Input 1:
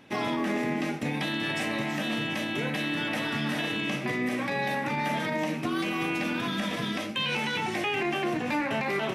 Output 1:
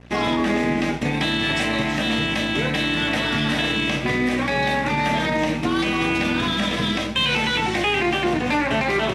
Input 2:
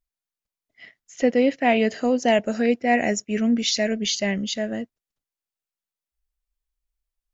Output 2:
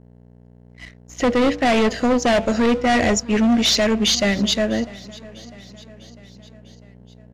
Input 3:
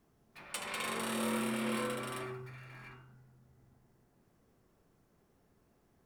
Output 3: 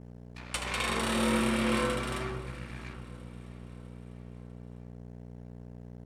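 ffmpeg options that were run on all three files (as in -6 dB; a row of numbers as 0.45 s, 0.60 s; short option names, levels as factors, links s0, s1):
-af "adynamicequalizer=threshold=0.00631:dfrequency=3700:dqfactor=3.2:tfrequency=3700:tqfactor=3.2:attack=5:release=100:ratio=0.375:range=2:mode=boostabove:tftype=bell,bandreject=f=96.74:t=h:w=4,bandreject=f=193.48:t=h:w=4,bandreject=f=290.22:t=h:w=4,bandreject=f=386.96:t=h:w=4,bandreject=f=483.7:t=h:w=4,bandreject=f=580.44:t=h:w=4,bandreject=f=677.18:t=h:w=4,bandreject=f=773.92:t=h:w=4,bandreject=f=870.66:t=h:w=4,bandreject=f=967.4:t=h:w=4,bandreject=f=1064.14:t=h:w=4,bandreject=f=1160.88:t=h:w=4,bandreject=f=1257.62:t=h:w=4,bandreject=f=1354.36:t=h:w=4,bandreject=f=1451.1:t=h:w=4,asoftclip=type=hard:threshold=0.0794,equalizer=f=91:w=6.9:g=13.5,aeval=exprs='val(0)+0.00501*(sin(2*PI*60*n/s)+sin(2*PI*2*60*n/s)/2+sin(2*PI*3*60*n/s)/3+sin(2*PI*4*60*n/s)/4+sin(2*PI*5*60*n/s)/5)':c=same,aeval=exprs='sgn(val(0))*max(abs(val(0))-0.00376,0)':c=same,lowpass=8900,aecho=1:1:650|1300|1950|2600:0.0891|0.0508|0.029|0.0165,volume=2.66"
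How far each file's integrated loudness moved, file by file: +8.0 LU, +4.0 LU, +6.0 LU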